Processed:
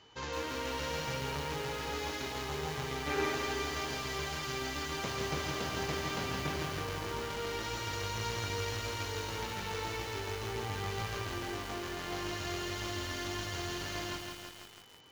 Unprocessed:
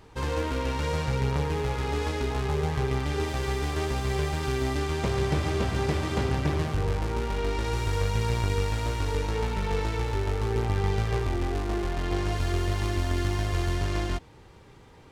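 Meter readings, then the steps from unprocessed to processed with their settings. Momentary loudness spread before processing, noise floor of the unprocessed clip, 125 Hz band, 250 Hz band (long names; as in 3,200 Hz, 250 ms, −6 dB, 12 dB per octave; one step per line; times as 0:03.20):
3 LU, −51 dBFS, −14.0 dB, −9.5 dB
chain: high-pass filter 67 Hz 12 dB per octave
gain on a spectral selection 0:03.07–0:03.35, 230–2,700 Hz +7 dB
Chebyshev low-pass filter 7,200 Hz, order 8
spectral tilt +2 dB per octave
steady tone 3,000 Hz −55 dBFS
feedback echo with a high-pass in the loop 154 ms, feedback 69%, high-pass 480 Hz, level −18 dB
feedback echo at a low word length 165 ms, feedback 80%, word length 7 bits, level −4 dB
level −6.5 dB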